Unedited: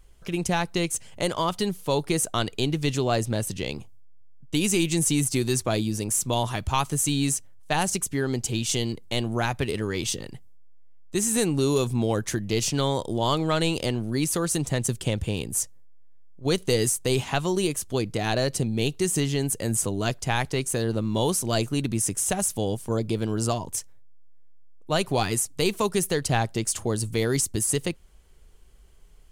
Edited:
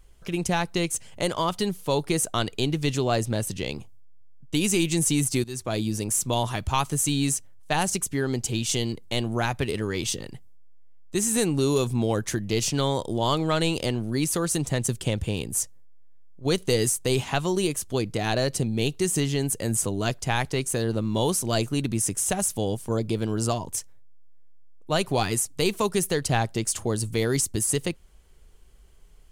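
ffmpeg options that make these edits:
-filter_complex "[0:a]asplit=2[s0][s1];[s0]atrim=end=5.44,asetpts=PTS-STARTPTS,afade=t=out:st=5.436:d=0.004:c=hsin:silence=0.141254[s2];[s1]atrim=start=5.44,asetpts=PTS-STARTPTS,afade=t=in:d=0.43:silence=0.141254[s3];[s2][s3]concat=n=2:v=0:a=1"

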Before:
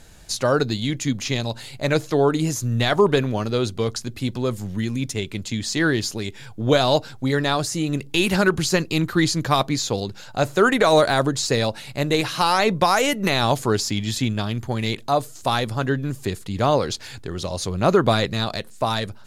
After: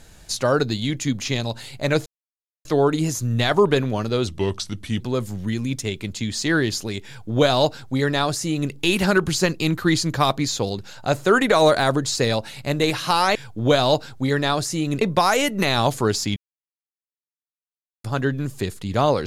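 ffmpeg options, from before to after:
-filter_complex "[0:a]asplit=8[s0][s1][s2][s3][s4][s5][s6][s7];[s0]atrim=end=2.06,asetpts=PTS-STARTPTS,afade=t=out:st=2.056:d=0.004:c=hsin,apad=pad_dur=0.59[s8];[s1]atrim=start=2.06:end=3.684,asetpts=PTS-STARTPTS,afade=t=in:d=0.004:c=hsin[s9];[s2]atrim=start=3.68:end=4.31,asetpts=PTS-STARTPTS,asetrate=37926,aresample=44100[s10];[s3]atrim=start=4.306:end=12.662[s11];[s4]atrim=start=6.368:end=8.032[s12];[s5]atrim=start=12.658:end=14.01,asetpts=PTS-STARTPTS,afade=t=out:st=1.348:d=0.004:c=hsin[s13];[s6]atrim=start=14.01:end=15.69,asetpts=PTS-STARTPTS,volume=0[s14];[s7]atrim=start=15.69,asetpts=PTS-STARTPTS,afade=t=in:d=0.004:c=hsin[s15];[s8][s9]concat=n=2:v=0:a=1[s16];[s16][s10]acrossfade=d=0.004:c1=hsin:c2=hsin[s17];[s17][s11]acrossfade=d=0.004:c1=hsin:c2=hsin[s18];[s18][s12]acrossfade=d=0.004:c1=hsin:c2=hsin[s19];[s13][s14][s15]concat=n=3:v=0:a=1[s20];[s19][s20]acrossfade=d=0.004:c1=hsin:c2=hsin"

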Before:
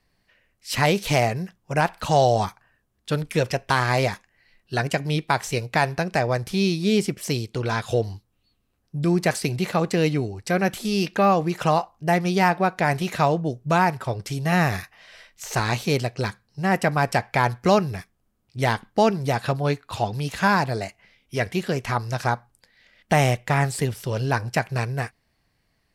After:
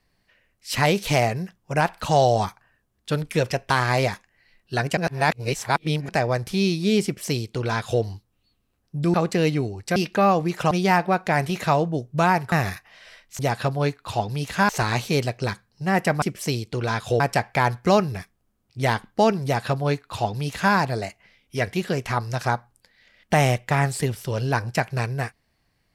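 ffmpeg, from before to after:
-filter_complex "[0:a]asplit=11[s0][s1][s2][s3][s4][s5][s6][s7][s8][s9][s10];[s0]atrim=end=4.972[s11];[s1]atrim=start=4.968:end=6.092,asetpts=PTS-STARTPTS,areverse[s12];[s2]atrim=start=6.088:end=9.142[s13];[s3]atrim=start=9.728:end=10.552[s14];[s4]atrim=start=10.968:end=11.722[s15];[s5]atrim=start=12.228:end=14.042[s16];[s6]atrim=start=14.588:end=15.462[s17];[s7]atrim=start=19.228:end=20.532[s18];[s8]atrim=start=15.458:end=16.992[s19];[s9]atrim=start=7.038:end=8.022[s20];[s10]atrim=start=16.988[s21];[s11][s12]acrossfade=d=0.004:c1=hsin:c2=hsin[s22];[s22][s13]acrossfade=d=0.004:c1=hsin:c2=hsin[s23];[s23][s14]acrossfade=d=0.004:c1=hsin:c2=hsin[s24];[s24][s15]acrossfade=d=0.004:c1=hsin:c2=hsin[s25];[s25][s16]acrossfade=d=0.004:c1=hsin:c2=hsin[s26];[s26][s17]acrossfade=d=0.004:c1=hsin:c2=hsin[s27];[s27][s18]acrossfade=d=0.004:c1=hsin:c2=hsin[s28];[s28][s19]acrossfade=d=0.004:c1=hsin:c2=hsin[s29];[s29][s20]acrossfade=d=0.004:c1=hsin:c2=hsin[s30];[s30][s21]acrossfade=d=0.004:c1=hsin:c2=hsin"

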